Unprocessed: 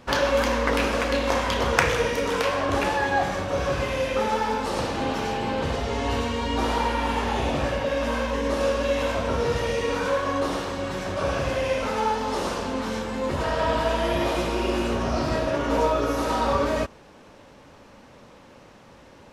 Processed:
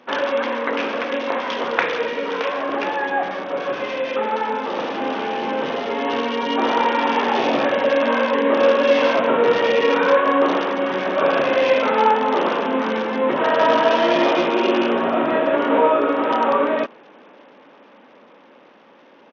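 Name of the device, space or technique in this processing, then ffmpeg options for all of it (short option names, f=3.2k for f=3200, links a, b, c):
Bluetooth headset: -af "highpass=f=230:w=0.5412,highpass=f=230:w=1.3066,dynaudnorm=f=740:g=11:m=9dB,aresample=8000,aresample=44100,volume=1dB" -ar 48000 -c:a sbc -b:a 64k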